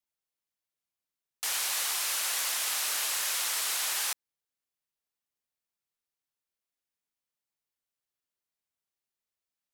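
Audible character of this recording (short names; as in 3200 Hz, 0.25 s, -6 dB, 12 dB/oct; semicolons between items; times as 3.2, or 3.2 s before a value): noise floor -91 dBFS; spectral tilt +2.0 dB/oct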